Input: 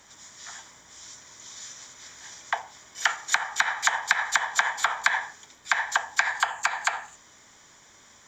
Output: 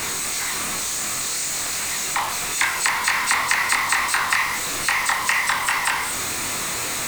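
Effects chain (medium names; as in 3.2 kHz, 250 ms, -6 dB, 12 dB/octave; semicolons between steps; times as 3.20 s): jump at every zero crossing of -20.5 dBFS; wide varispeed 1.17×; chorus 2.6 Hz, depth 3.8 ms; trim +3.5 dB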